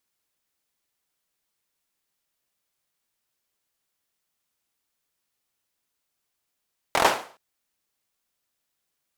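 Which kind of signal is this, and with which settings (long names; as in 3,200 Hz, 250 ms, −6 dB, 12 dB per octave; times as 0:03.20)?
synth clap length 0.42 s, bursts 5, apart 24 ms, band 760 Hz, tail 0.42 s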